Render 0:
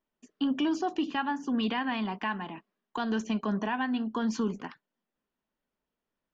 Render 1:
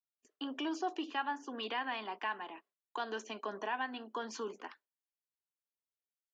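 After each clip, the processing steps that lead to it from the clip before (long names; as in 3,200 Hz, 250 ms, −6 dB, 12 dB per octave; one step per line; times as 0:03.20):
high-pass filter 350 Hz 24 dB per octave
noise gate with hold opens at −46 dBFS
level −4.5 dB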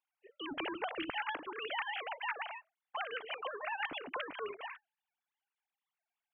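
three sine waves on the formant tracks
every bin compressed towards the loudest bin 2 to 1
level +1.5 dB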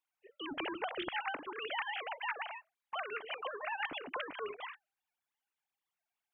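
wow of a warped record 33 1/3 rpm, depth 160 cents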